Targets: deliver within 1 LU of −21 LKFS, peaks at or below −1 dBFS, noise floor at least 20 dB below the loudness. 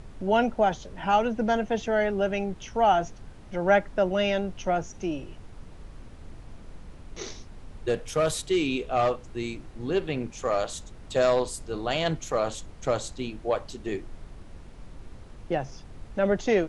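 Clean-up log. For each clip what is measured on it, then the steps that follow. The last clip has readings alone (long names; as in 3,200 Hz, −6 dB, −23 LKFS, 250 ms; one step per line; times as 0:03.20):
background noise floor −46 dBFS; target noise floor −48 dBFS; integrated loudness −27.5 LKFS; sample peak −9.0 dBFS; target loudness −21.0 LKFS
→ noise reduction from a noise print 6 dB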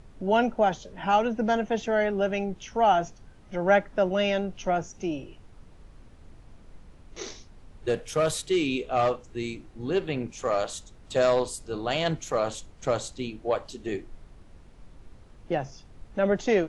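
background noise floor −52 dBFS; integrated loudness −27.5 LKFS; sample peak −9.5 dBFS; target loudness −21.0 LKFS
→ level +6.5 dB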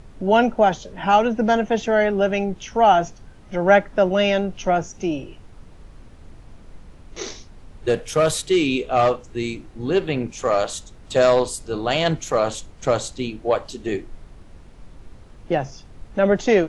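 integrated loudness −21.0 LKFS; sample peak −3.0 dBFS; background noise floor −45 dBFS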